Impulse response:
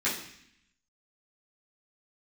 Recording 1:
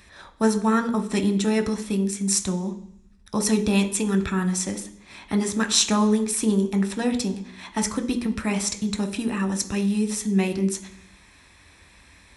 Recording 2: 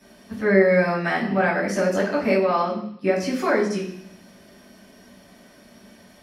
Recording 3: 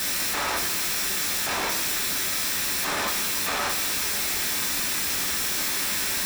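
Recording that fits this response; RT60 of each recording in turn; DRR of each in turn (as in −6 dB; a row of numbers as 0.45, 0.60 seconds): 2; 0.65, 0.65, 0.65 seconds; 5.0, −10.5, −1.0 decibels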